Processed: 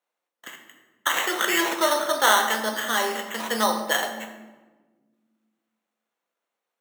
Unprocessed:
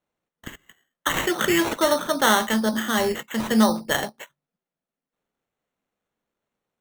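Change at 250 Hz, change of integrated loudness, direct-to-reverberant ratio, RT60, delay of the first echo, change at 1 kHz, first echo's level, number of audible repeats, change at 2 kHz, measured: −9.5 dB, −1.0 dB, 4.0 dB, 1.4 s, no echo audible, +1.5 dB, no echo audible, no echo audible, +1.5 dB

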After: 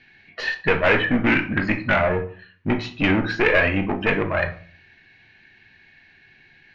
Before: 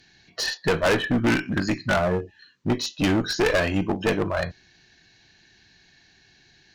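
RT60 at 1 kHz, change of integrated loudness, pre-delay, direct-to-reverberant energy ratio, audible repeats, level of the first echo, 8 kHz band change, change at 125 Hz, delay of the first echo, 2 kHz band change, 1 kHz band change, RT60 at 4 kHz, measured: 0.45 s, +3.0 dB, 4 ms, 6.0 dB, no echo audible, no echo audible, below −15 dB, +1.0 dB, no echo audible, +6.5 dB, +3.0 dB, 0.30 s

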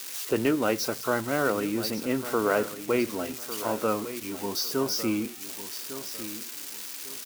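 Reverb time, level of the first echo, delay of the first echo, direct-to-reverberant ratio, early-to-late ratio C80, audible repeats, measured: no reverb audible, −12.5 dB, 1,152 ms, no reverb audible, no reverb audible, 3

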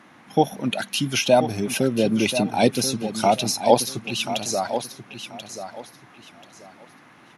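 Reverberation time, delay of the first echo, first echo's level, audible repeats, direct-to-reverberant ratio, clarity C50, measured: no reverb audible, 1,035 ms, −10.0 dB, 3, no reverb audible, no reverb audible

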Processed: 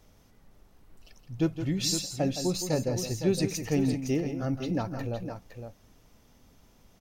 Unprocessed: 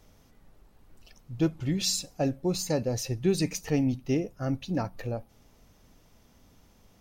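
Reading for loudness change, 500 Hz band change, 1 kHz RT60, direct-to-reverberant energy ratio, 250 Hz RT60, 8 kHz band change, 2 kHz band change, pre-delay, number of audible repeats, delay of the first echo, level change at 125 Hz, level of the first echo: 0.0 dB, 0.0 dB, no reverb audible, no reverb audible, no reverb audible, 0.0 dB, 0.0 dB, no reverb audible, 2, 166 ms, 0.0 dB, −9.5 dB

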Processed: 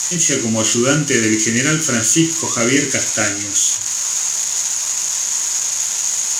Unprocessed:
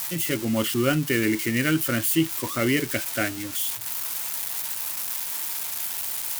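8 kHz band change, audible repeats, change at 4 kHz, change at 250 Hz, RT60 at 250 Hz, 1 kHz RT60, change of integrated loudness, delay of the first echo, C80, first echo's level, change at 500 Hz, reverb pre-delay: +18.0 dB, no echo audible, +10.0 dB, +6.5 dB, 0.50 s, 0.45 s, +9.5 dB, no echo audible, 14.5 dB, no echo audible, +7.0 dB, 15 ms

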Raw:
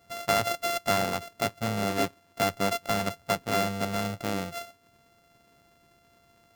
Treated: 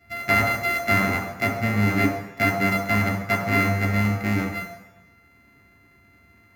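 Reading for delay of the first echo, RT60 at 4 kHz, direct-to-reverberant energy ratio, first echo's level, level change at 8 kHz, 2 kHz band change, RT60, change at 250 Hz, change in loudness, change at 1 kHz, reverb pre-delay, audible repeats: no echo audible, 1.0 s, 0.5 dB, no echo audible, −3.0 dB, +12.0 dB, 1.0 s, +9.0 dB, +6.5 dB, +3.0 dB, 3 ms, no echo audible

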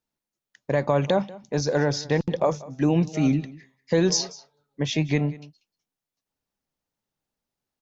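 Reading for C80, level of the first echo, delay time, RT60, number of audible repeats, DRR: no reverb audible, −20.0 dB, 188 ms, no reverb audible, 1, no reverb audible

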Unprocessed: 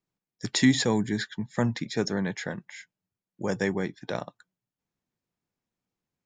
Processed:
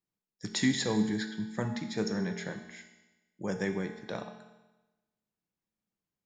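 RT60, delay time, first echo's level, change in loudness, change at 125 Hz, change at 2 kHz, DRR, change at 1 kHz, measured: 1.1 s, no echo audible, no echo audible, −5.0 dB, −6.0 dB, −5.5 dB, 5.5 dB, −5.5 dB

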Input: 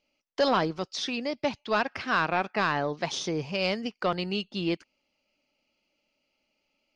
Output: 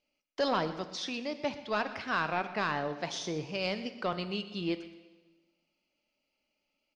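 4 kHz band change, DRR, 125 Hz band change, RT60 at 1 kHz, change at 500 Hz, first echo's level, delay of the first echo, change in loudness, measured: −5.0 dB, 10.0 dB, −5.0 dB, 1.3 s, −5.0 dB, −16.5 dB, 122 ms, −5.0 dB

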